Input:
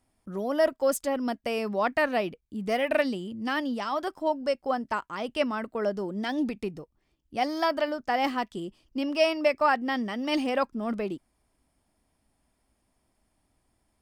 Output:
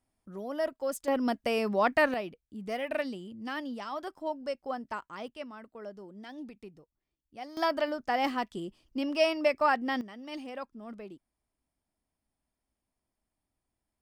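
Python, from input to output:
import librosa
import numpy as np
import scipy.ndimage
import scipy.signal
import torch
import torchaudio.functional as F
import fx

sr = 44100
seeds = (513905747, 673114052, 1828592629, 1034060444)

y = fx.gain(x, sr, db=fx.steps((0.0, -8.0), (1.08, 0.5), (2.14, -7.5), (5.28, -15.0), (7.57, -2.5), (10.01, -13.5)))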